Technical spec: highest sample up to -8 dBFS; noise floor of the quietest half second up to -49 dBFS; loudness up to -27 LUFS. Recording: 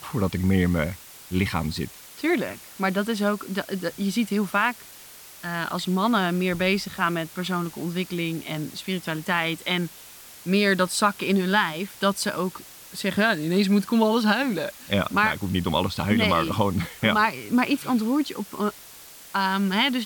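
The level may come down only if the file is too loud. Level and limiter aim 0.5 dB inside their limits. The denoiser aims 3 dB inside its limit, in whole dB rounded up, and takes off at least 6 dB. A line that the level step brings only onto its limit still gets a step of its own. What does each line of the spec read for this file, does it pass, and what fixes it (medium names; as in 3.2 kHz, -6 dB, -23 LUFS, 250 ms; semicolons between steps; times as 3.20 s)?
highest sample -8.5 dBFS: pass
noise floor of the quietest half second -45 dBFS: fail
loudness -24.5 LUFS: fail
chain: noise reduction 6 dB, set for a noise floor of -45 dBFS; trim -3 dB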